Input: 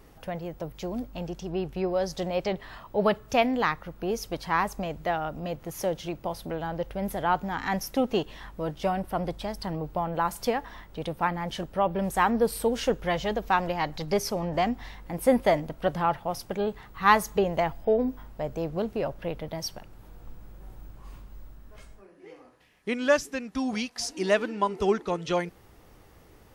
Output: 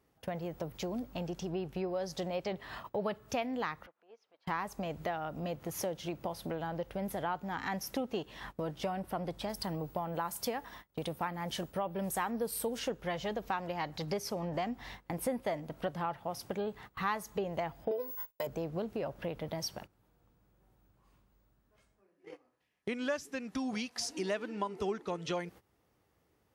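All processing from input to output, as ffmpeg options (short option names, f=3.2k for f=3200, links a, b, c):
-filter_complex "[0:a]asettb=1/sr,asplit=3[a][b][c];[a]atrim=end=3.864[d];[b]atrim=start=3.86:end=4.47,asetpts=PTS-STARTPTS,afade=t=in:d=0.004:c=qsin,afade=t=out:st=0.606:d=0.004:c=qsin,highpass=600,lowpass=2.8k,acompressor=threshold=-56dB:ratio=2:attack=3.2:release=140:knee=1:detection=peak[e];[c]atrim=start=4.466[f];[d][e]acrossfade=d=0.004:c1=hsin:c2=qsin[g];[g][f]acrossfade=d=0.004:c1=qsin:c2=hsin,asettb=1/sr,asplit=3[h][i][j];[h]atrim=end=9.494[k];[i]atrim=start=9.49:end=12.79,asetpts=PTS-STARTPTS,afade=t=in:d=0.004:c=qsin,afade=t=out:st=3.296:d=0.004:c=qsin,highshelf=f=7.4k:g=10,agate=range=-33dB:threshold=-42dB:ratio=3:release=100:detection=peak[l];[j]atrim=start=12.786[m];[k][l]acrossfade=d=0.004:c1=hsin:c2=qsin[n];[n][m]acrossfade=d=0.004:c1=qsin:c2=hsin,asettb=1/sr,asplit=3[o][p][q];[o]atrim=end=17.914[r];[p]atrim=start=17.91:end=18.47,asetpts=PTS-STARTPTS,afade=t=in:d=0.004:c=qsin,afade=t=out:st=0.556:d=0.004:c=qsin,aemphasis=mode=production:type=riaa,agate=range=-23dB:threshold=-40dB:ratio=16:release=100:detection=peak,aecho=1:1:2:0.69,atrim=end_sample=24696[s];[q]atrim=start=18.466[t];[r][s]acrossfade=d=0.004:c1=hsin:c2=qsin[u];[u][t]acrossfade=d=0.004:c1=qsin:c2=hsin,highpass=76,agate=range=-20dB:threshold=-45dB:ratio=16:detection=peak,acompressor=threshold=-39dB:ratio=3,volume=2.5dB"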